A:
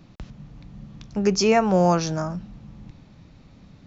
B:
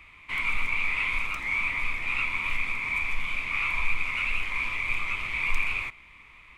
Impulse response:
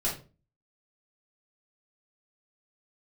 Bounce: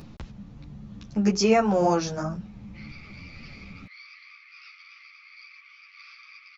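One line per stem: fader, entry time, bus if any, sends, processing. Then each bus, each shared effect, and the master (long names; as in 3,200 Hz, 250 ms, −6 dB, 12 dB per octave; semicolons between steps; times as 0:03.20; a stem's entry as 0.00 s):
0.0 dB, 0.00 s, no send, low-shelf EQ 370 Hz +3.5 dB; upward compression, threshold −34 dBFS
−12.0 dB, 2.45 s, no send, phase distortion by the signal itself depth 0.21 ms; brick-wall band-pass 1,100–6,100 Hz; high-shelf EQ 3,300 Hz −8.5 dB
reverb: not used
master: string-ensemble chorus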